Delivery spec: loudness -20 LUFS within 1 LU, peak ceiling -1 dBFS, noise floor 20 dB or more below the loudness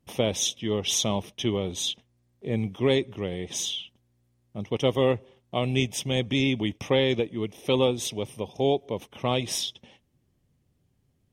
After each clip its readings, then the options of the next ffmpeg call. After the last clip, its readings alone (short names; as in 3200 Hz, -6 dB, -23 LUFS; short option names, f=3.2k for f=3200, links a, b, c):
loudness -27.0 LUFS; peak -8.5 dBFS; loudness target -20.0 LUFS
-> -af "volume=7dB"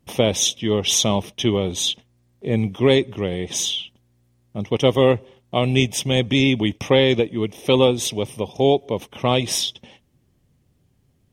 loudness -20.0 LUFS; peak -1.5 dBFS; noise floor -63 dBFS